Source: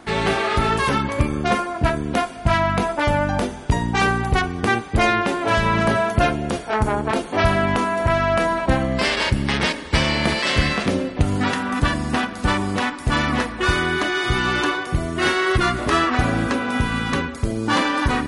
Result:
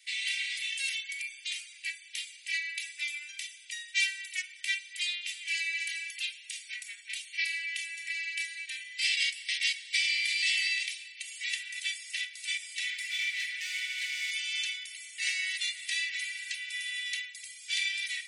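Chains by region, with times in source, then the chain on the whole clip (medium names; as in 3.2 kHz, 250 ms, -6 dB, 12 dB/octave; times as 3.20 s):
12.89–14.31 s: compression 2.5:1, threshold -24 dBFS + comb 5.5 ms, depth 41% + overdrive pedal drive 23 dB, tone 1.6 kHz, clips at -10.5 dBFS
whole clip: steep high-pass 2 kHz 72 dB/octave; peaking EQ 8.1 kHz +3.5 dB 0.41 oct; comb 2.6 ms, depth 84%; trim -6.5 dB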